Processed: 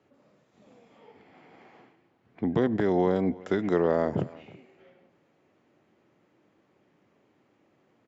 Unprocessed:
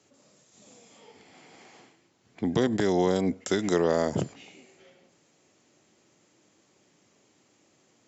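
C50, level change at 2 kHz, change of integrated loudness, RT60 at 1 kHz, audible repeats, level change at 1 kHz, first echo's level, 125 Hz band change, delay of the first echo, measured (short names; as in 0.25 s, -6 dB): none, -2.0 dB, 0.0 dB, none, 1, 0.0 dB, -22.0 dB, 0.0 dB, 0.327 s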